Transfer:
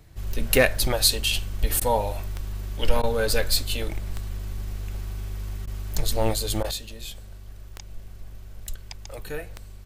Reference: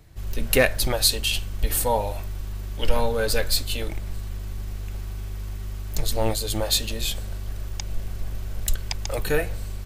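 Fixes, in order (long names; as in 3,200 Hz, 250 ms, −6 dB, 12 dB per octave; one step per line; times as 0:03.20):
click removal
repair the gap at 0:01.80/0:03.02/0:05.66/0:06.63, 12 ms
level 0 dB, from 0:06.71 +10.5 dB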